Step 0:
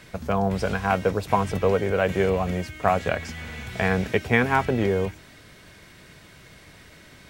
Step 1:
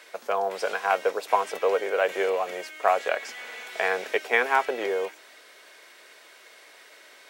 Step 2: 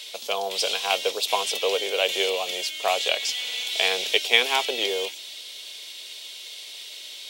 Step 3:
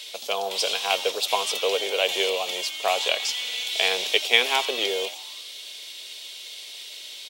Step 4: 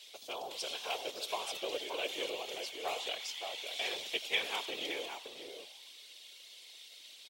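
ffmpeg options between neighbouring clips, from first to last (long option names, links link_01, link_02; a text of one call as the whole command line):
ffmpeg -i in.wav -af "highpass=frequency=430:width=0.5412,highpass=frequency=430:width=1.3066" out.wav
ffmpeg -i in.wav -af "highshelf=frequency=2300:width_type=q:width=3:gain=13,volume=-1dB" out.wav
ffmpeg -i in.wav -filter_complex "[0:a]asplit=6[link_01][link_02][link_03][link_04][link_05][link_06];[link_02]adelay=84,afreqshift=140,volume=-19dB[link_07];[link_03]adelay=168,afreqshift=280,volume=-23.6dB[link_08];[link_04]adelay=252,afreqshift=420,volume=-28.2dB[link_09];[link_05]adelay=336,afreqshift=560,volume=-32.7dB[link_10];[link_06]adelay=420,afreqshift=700,volume=-37.3dB[link_11];[link_01][link_07][link_08][link_09][link_10][link_11]amix=inputs=6:normalize=0" out.wav
ffmpeg -i in.wav -filter_complex "[0:a]asplit=2[link_01][link_02];[link_02]adelay=571.4,volume=-6dB,highshelf=frequency=4000:gain=-12.9[link_03];[link_01][link_03]amix=inputs=2:normalize=0,afftfilt=real='hypot(re,im)*cos(2*PI*random(0))':imag='hypot(re,im)*sin(2*PI*random(1))':win_size=512:overlap=0.75,volume=-8.5dB" out.wav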